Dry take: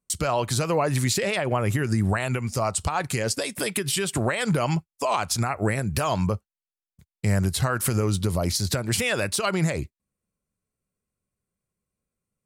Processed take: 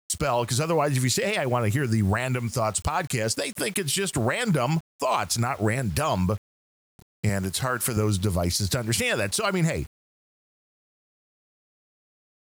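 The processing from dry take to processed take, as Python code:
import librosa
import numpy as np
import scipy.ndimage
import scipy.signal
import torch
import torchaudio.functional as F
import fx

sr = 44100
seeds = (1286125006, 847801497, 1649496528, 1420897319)

y = fx.highpass(x, sr, hz=220.0, slope=6, at=(7.29, 7.97))
y = fx.quant_dither(y, sr, seeds[0], bits=8, dither='none')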